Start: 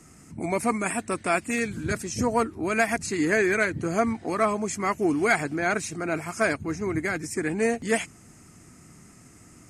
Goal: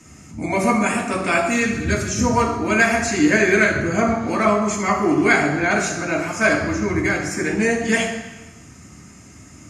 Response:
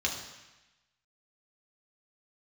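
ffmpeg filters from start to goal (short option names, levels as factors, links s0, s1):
-filter_complex "[1:a]atrim=start_sample=2205[s0];[0:a][s0]afir=irnorm=-1:irlink=0,asplit=3[s1][s2][s3];[s1]afade=t=out:st=3.8:d=0.02[s4];[s2]adynamicequalizer=threshold=0.0282:dfrequency=2600:dqfactor=0.7:tfrequency=2600:tqfactor=0.7:attack=5:release=100:ratio=0.375:range=2:mode=cutabove:tftype=highshelf,afade=t=in:st=3.8:d=0.02,afade=t=out:st=5.7:d=0.02[s5];[s3]afade=t=in:st=5.7:d=0.02[s6];[s4][s5][s6]amix=inputs=3:normalize=0,volume=1.12"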